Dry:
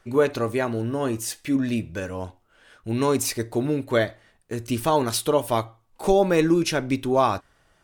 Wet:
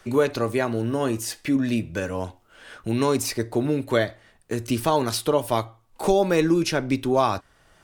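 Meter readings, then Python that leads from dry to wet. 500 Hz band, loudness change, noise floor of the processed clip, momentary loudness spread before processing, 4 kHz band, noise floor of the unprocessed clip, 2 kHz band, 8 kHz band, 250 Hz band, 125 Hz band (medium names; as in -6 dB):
-0.5 dB, 0.0 dB, -59 dBFS, 12 LU, +0.5 dB, -63 dBFS, +0.5 dB, -1.5 dB, +0.5 dB, +0.5 dB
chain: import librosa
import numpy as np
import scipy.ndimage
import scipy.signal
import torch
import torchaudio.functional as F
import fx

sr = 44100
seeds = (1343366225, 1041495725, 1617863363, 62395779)

y = fx.dynamic_eq(x, sr, hz=4800.0, q=3.2, threshold_db=-47.0, ratio=4.0, max_db=4)
y = fx.band_squash(y, sr, depth_pct=40)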